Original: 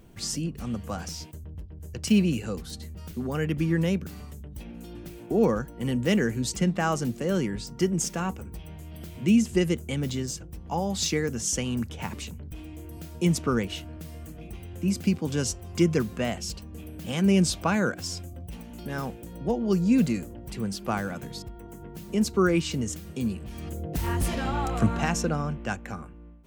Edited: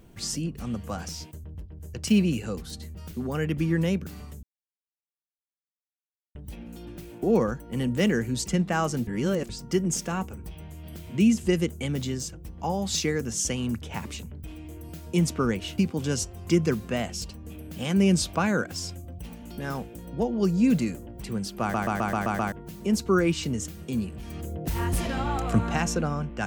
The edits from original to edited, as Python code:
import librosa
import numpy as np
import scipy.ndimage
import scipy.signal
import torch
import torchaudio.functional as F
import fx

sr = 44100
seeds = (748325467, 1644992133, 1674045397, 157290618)

y = fx.edit(x, sr, fx.insert_silence(at_s=4.43, length_s=1.92),
    fx.reverse_span(start_s=7.15, length_s=0.42),
    fx.cut(start_s=13.86, length_s=1.2),
    fx.stutter_over(start_s=20.89, slice_s=0.13, count=7), tone=tone)